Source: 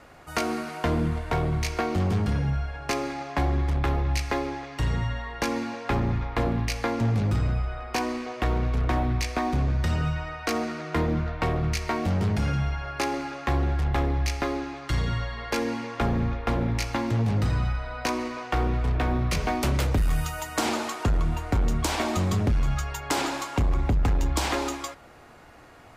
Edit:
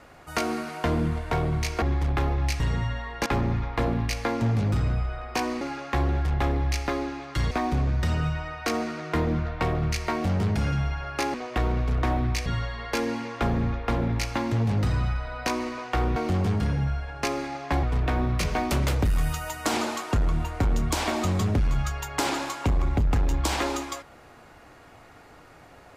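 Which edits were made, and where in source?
1.82–3.49 move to 18.75
4.27–4.8 cut
5.46–5.85 cut
8.2–9.32 swap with 13.15–15.05

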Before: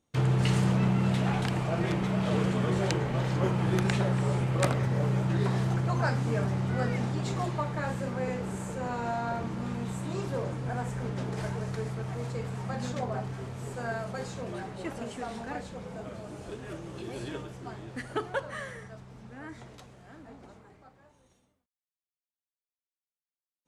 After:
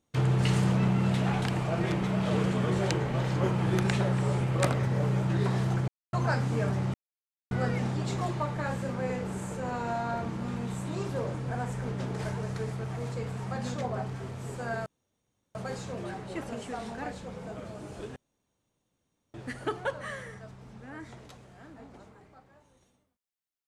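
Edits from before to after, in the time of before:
5.88 insert silence 0.25 s
6.69 insert silence 0.57 s
14.04 insert room tone 0.69 s
16.65–17.83 room tone

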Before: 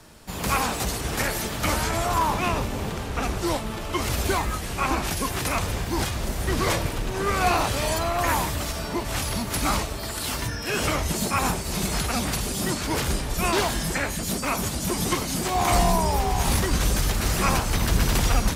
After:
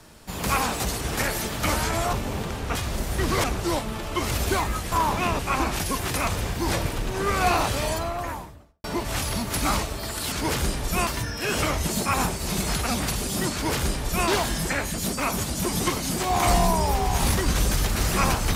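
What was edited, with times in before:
2.13–2.6 move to 4.7
6.04–6.73 move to 3.22
7.66–8.84 studio fade out
12.78–13.53 copy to 10.32

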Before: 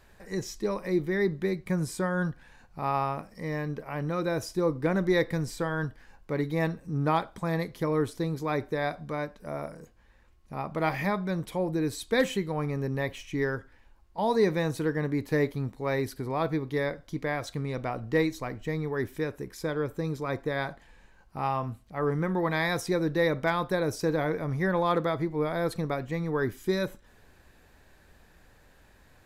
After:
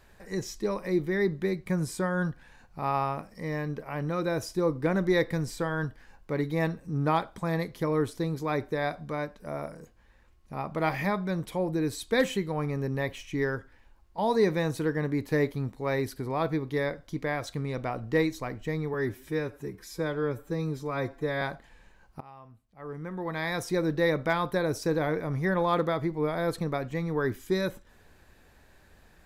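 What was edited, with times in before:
18.94–20.59 stretch 1.5×
21.38–22.97 fade in quadratic, from -21 dB

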